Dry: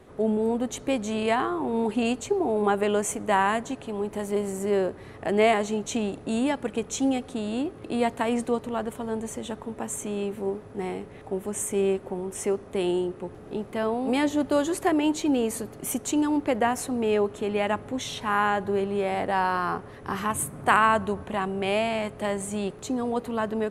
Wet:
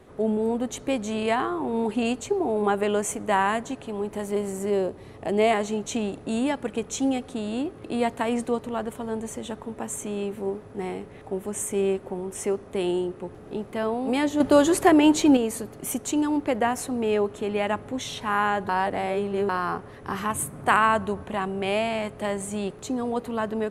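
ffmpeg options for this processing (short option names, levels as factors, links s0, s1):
-filter_complex "[0:a]asettb=1/sr,asplit=3[s0][s1][s2];[s0]atrim=end=4.704[s3];[s1]atrim=start=4.7:end=5.51,asetpts=PTS-STARTPTS,afade=t=in:d=0.004:c=qsin,afade=t=out:st=0.806:d=0.004:c=qsin,equalizer=f=1600:w=1.6:g=-7[s4];[s2]atrim=start=5.506[s5];[s3][s4]acrossfade=d=0.004:c1=hsin:c2=qsin[s6];[s6][s5]acrossfade=d=0.004:c1=qsin:c2=hsin,asettb=1/sr,asplit=3[s7][s8][s9];[s7]atrim=end=14.404[s10];[s8]atrim=start=14.4:end=15.37,asetpts=PTS-STARTPTS,afade=t=in:d=0.004:c=qsin,afade=t=out:st=0.966:d=0.004:c=qsin,acontrast=68[s11];[s9]atrim=start=15.366[s12];[s10][s11]acrossfade=d=0.004:c1=hsin:c2=qsin[s13];[s13][s12]acrossfade=d=0.004:c1=qsin:c2=hsin,asplit=3[s14][s15][s16];[s14]atrim=end=18.692[s17];[s15]atrim=start=18.688:end=19.492,asetpts=PTS-STARTPTS,areverse[s18];[s16]atrim=start=19.488[s19];[s17][s18]acrossfade=d=0.004:c1=hsin:c2=hsin[s20];[s20][s19]acrossfade=d=0.004:c1=hsin:c2=hsin"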